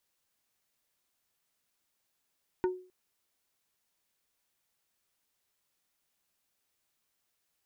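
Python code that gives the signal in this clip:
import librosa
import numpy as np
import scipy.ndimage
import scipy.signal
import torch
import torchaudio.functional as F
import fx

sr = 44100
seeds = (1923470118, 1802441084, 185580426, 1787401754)

y = fx.strike_wood(sr, length_s=0.26, level_db=-23.0, body='plate', hz=367.0, decay_s=0.4, tilt_db=7, modes=5)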